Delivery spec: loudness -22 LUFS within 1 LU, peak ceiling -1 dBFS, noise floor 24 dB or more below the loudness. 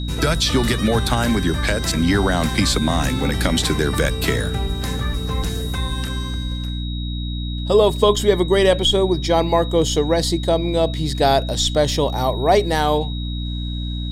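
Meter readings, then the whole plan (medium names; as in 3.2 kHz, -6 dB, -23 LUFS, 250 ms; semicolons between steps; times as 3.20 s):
hum 60 Hz; highest harmonic 300 Hz; hum level -23 dBFS; steady tone 3.8 kHz; tone level -33 dBFS; loudness -19.5 LUFS; peak level -3.0 dBFS; loudness target -22.0 LUFS
-> de-hum 60 Hz, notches 5; band-stop 3.8 kHz, Q 30; trim -2.5 dB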